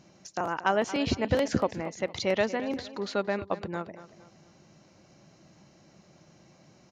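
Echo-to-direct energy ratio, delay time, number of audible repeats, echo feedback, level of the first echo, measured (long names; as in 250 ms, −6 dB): −14.5 dB, 230 ms, 3, 37%, −15.0 dB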